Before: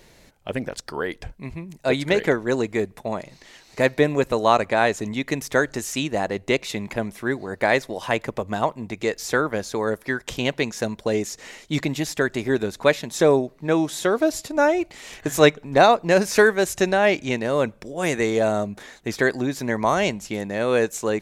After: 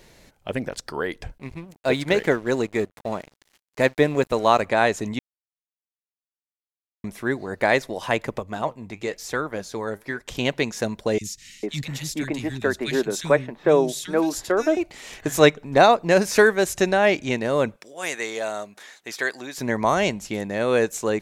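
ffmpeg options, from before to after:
-filter_complex "[0:a]asettb=1/sr,asplit=3[a][b][c];[a]atrim=end=1.384[d];[b]atrim=start=1.38:end=4.62,asetpts=PTS-STARTPTS,afade=t=in:d=0.004:c=qsin,afade=t=out:st=3.236:d=0.004:c=qsin,aeval=exprs='sgn(val(0))*max(abs(val(0))-0.00794,0)':c=same[e];[c]atrim=start=4.616[f];[d][e]acrossfade=d=0.004:c1=hsin:c2=qsin[g];[g][f]acrossfade=d=0.004:c1=qsin:c2=hsin,asettb=1/sr,asplit=3[h][i][j];[h]atrim=end=8.394[k];[i]atrim=start=8.39:end=10.35,asetpts=PTS-STARTPTS,afade=t=in:d=0.004:c=qsin,afade=t=out:st=1.956:d=0.004:c=qsin,flanger=delay=0.8:depth=9.8:regen=69:speed=1:shape=sinusoidal[l];[j]atrim=start=10.346[m];[k][l]acrossfade=d=0.004:c1=hsin:c2=qsin[n];[n][m]acrossfade=d=0.004:c1=qsin:c2=hsin,asettb=1/sr,asplit=3[o][p][q];[o]atrim=end=11.184[r];[p]atrim=start=11.18:end=14.77,asetpts=PTS-STARTPTS,afade=t=in:d=0.004:c=qsin,afade=t=out:st=3.586:d=0.004:c=qsin,acrossover=split=200|2300[s][t][u];[s]adelay=30[v];[t]adelay=450[w];[v][w][u]amix=inputs=3:normalize=0,atrim=end_sample=158319[x];[q]atrim=start=14.766[y];[r][x]acrossfade=d=0.004:c1=hsin:c2=qsin[z];[z][y]acrossfade=d=0.004:c1=qsin:c2=hsin,asettb=1/sr,asplit=3[aa][ab][ac];[aa]atrim=end=17.764[ad];[ab]atrim=start=17.76:end=19.58,asetpts=PTS-STARTPTS,afade=t=in:d=0.004:c=qsin,afade=t=out:st=1.816:d=0.004:c=qsin,highpass=f=1.3k:p=1[ae];[ac]atrim=start=19.576[af];[ad][ae]acrossfade=d=0.004:c1=hsin:c2=qsin[ag];[ag][af]acrossfade=d=0.004:c1=qsin:c2=hsin,asplit=3[ah][ai][aj];[ah]atrim=end=5.19,asetpts=PTS-STARTPTS,afade=t=out:st=5.186:d=0.004:c=hsin[ak];[ai]atrim=start=5.19:end=7.04,asetpts=PTS-STARTPTS,volume=0[al];[aj]atrim=start=7.04,asetpts=PTS-STARTPTS,afade=t=in:d=0.004:c=hsin[am];[ak][al][am]concat=n=3:v=0:a=1"

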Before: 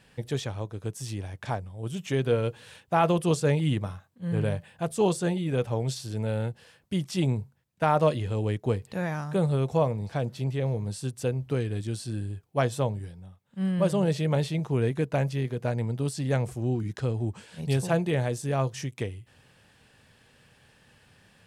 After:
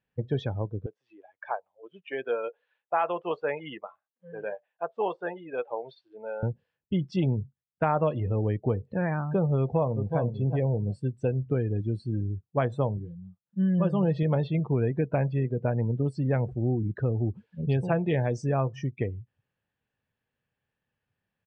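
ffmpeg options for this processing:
-filter_complex "[0:a]asettb=1/sr,asplit=3[a][b][c];[a]atrim=end=0.864[d];[b]atrim=start=0.86:end=6.43,asetpts=PTS-STARTPTS,afade=t=in:d=0.004:c=qsin,afade=t=out:st=5.566:d=0.004:c=qsin,highpass=640,lowpass=3.5k[e];[c]atrim=start=6.426[f];[d][e]acrossfade=d=0.004:c1=hsin:c2=qsin[g];[g][f]acrossfade=d=0.004:c1=qsin:c2=hsin,asplit=2[h][i];[i]afade=t=in:st=9.59:d=0.01,afade=t=out:st=10.19:d=0.01,aecho=0:1:370|740|1110:0.375837|0.0751675|0.0150335[j];[h][j]amix=inputs=2:normalize=0,asettb=1/sr,asplit=3[k][l][m];[k]atrim=end=12.974[n];[l]atrim=start=12.97:end=14.23,asetpts=PTS-STARTPTS,afade=t=in:d=0.004:c=qsin,afade=t=out:st=1.256:d=0.004:c=qsin,aecho=1:1:5.9:0.52,atrim=end_sample=55566[o];[m]atrim=start=14.226[p];[n][o]acrossfade=d=0.004:c1=hsin:c2=qsin[q];[q][p]acrossfade=d=0.004:c1=qsin:c2=hsin,asettb=1/sr,asplit=3[r][s][t];[r]atrim=end=17.984[u];[s]atrim=start=17.98:end=18.53,asetpts=PTS-STARTPTS,afade=t=in:d=0.004:c=qsin,afade=t=out:st=0.546:d=0.004:c=qsin,equalizer=f=5.8k:w=1.5:g=10[v];[t]atrim=start=18.526[w];[u][v]acrossfade=d=0.004:c1=hsin:c2=qsin[x];[x][w]acrossfade=d=0.004:c1=qsin:c2=hsin,afftdn=nr=28:nf=-37,lowpass=2.8k,acompressor=threshold=-26dB:ratio=3,volume=3.5dB"

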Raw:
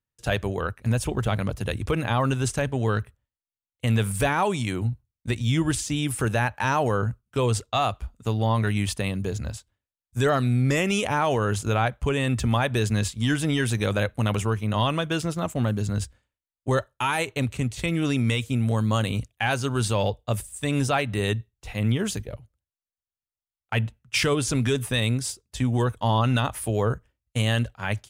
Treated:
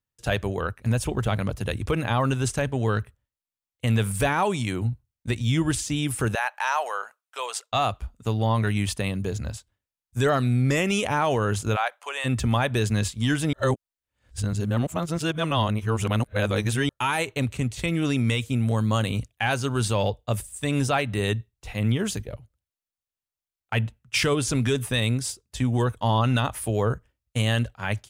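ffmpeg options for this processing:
-filter_complex "[0:a]asettb=1/sr,asplit=3[a][b][c];[a]atrim=end=6.354[d];[b]atrim=start=6.35:end=7.72,asetpts=PTS-STARTPTS,afade=t=in:d=0.004:c=qsin,afade=t=out:st=1.366:d=0.004:c=qsin,highpass=f=670:w=0.5412,highpass=f=670:w=1.3066[e];[c]atrim=start=7.716[f];[d][e]acrossfade=d=0.004:c1=hsin:c2=qsin[g];[g][f]acrossfade=d=0.004:c1=qsin:c2=hsin,asplit=3[h][i][j];[h]afade=t=out:st=11.75:d=0.02[k];[i]highpass=f=650:w=0.5412,highpass=f=650:w=1.3066,afade=t=in:st=11.75:d=0.02,afade=t=out:st=12.24:d=0.02[l];[j]afade=t=in:st=12.24:d=0.02[m];[k][l][m]amix=inputs=3:normalize=0,asplit=3[n][o][p];[n]atrim=end=13.532[q];[o]atrim=start=13.528:end=16.892,asetpts=PTS-STARTPTS,areverse[r];[p]atrim=start=16.888[s];[q][r]acrossfade=d=0.004:c1=hsin:c2=hsin[t];[t][s]acrossfade=d=0.004:c1=hsin:c2=hsin"

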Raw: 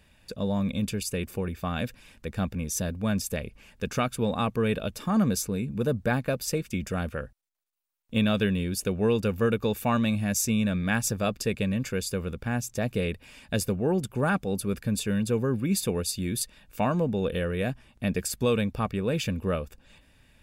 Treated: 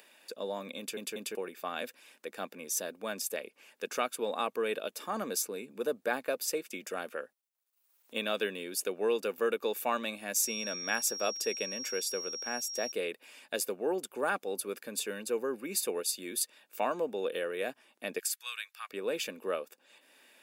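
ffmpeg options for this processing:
-filter_complex "[0:a]asettb=1/sr,asplit=3[a][b][c];[a]atrim=end=10.424[d];[b]atrim=start=10.42:end=12.92,asetpts=PTS-STARTPTS,afade=t=in:d=0.004:c=qsin,afade=t=out:st=2.496:d=0.004:c=qsin,aeval=exprs='val(0)+0.0178*sin(2*PI*5600*n/s)':c=same[e];[c]atrim=start=12.916[f];[d][e]acrossfade=d=0.004:c1=hsin:c2=qsin[g];[g][f]acrossfade=d=0.004:c1=qsin:c2=hsin,asettb=1/sr,asplit=3[h][i][j];[h]atrim=end=15.114[k];[i]atrim=start=15.11:end=15.97,asetpts=PTS-STARTPTS,afade=t=in:d=0.004:c=qsin,afade=t=out:st=0.856:d=0.004:c=qsin,bandreject=f=3.4k:w=12[l];[j]atrim=start=15.966[m];[k][l]acrossfade=d=0.004:c1=hsin:c2=qsin[n];[n][m]acrossfade=d=0.004:c1=qsin:c2=hsin,asplit=3[o][p][q];[o]afade=t=out:st=18.18:d=0.02[r];[p]highpass=f=1.4k:w=0.5412,highpass=f=1.4k:w=1.3066,afade=t=in:st=18.18:d=0.02,afade=t=out:st=18.89:d=0.02[s];[q]afade=t=in:st=18.89:d=0.02[t];[r][s][t]amix=inputs=3:normalize=0,asplit=4[u][v][w][x];[u]atrim=end=0.972[y];[v]atrim=start=0.778:end=0.972[z];[w]atrim=start=0.778:end=0.972[aa];[x]atrim=start=1.348[ab];[y][z]acrossfade=d=0.004:c1=hsin:c2=hsin[ac];[ac][aa]acrossfade=d=0.004:c1=hsin:c2=hsin[ad];[ad][ab]acrossfade=d=0.004:c1=hsin:c2=hsin,highpass=f=330:w=0.5412,highpass=f=330:w=1.3066,highshelf=f=12k:g=8,acompressor=mode=upward:threshold=-49dB:ratio=2.5,volume=-3.5dB"

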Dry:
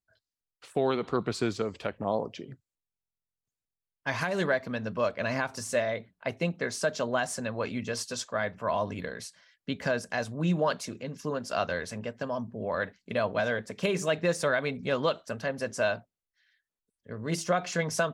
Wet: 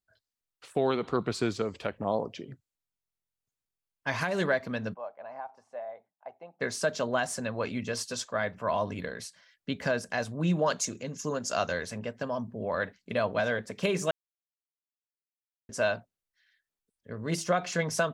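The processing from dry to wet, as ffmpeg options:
-filter_complex "[0:a]asplit=3[a][b][c];[a]afade=t=out:st=4.93:d=0.02[d];[b]bandpass=f=790:t=q:w=6.4,afade=t=in:st=4.93:d=0.02,afade=t=out:st=6.6:d=0.02[e];[c]afade=t=in:st=6.6:d=0.02[f];[d][e][f]amix=inputs=3:normalize=0,asettb=1/sr,asplit=3[g][h][i];[g]atrim=end=10.664[j];[h]atrim=start=10.66:end=11.86,asetpts=PTS-STARTPTS,afade=t=in:d=0.004:c=qsin,afade=t=out:st=1.196:d=0.004:c=qsin,equalizer=f=6.7k:t=o:w=0.45:g=14.5[k];[i]atrim=start=11.856[l];[j][k]acrossfade=d=0.004:c1=hsin:c2=qsin[m];[m][l]acrossfade=d=0.004:c1=qsin:c2=hsin,asplit=3[n][o][p];[n]atrim=end=14.11,asetpts=PTS-STARTPTS,afade=t=out:st=14.106:d=0.004:c=hsin[q];[o]atrim=start=14.11:end=15.69,asetpts=PTS-STARTPTS,volume=0[r];[p]atrim=start=15.69,asetpts=PTS-STARTPTS,afade=t=in:d=0.004:c=hsin[s];[q][r][s]concat=n=3:v=0:a=1"

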